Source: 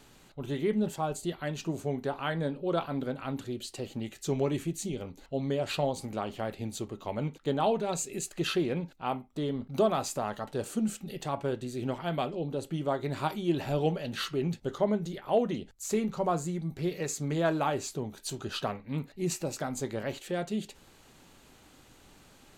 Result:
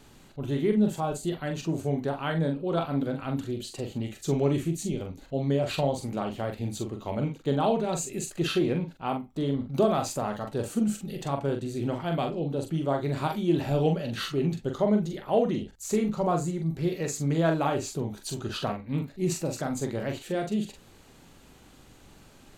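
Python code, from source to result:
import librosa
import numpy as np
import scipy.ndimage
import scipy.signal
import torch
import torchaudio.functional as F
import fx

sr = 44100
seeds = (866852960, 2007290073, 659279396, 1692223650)

y = fx.low_shelf(x, sr, hz=380.0, db=5.0)
y = fx.doubler(y, sr, ms=43.0, db=-5.5)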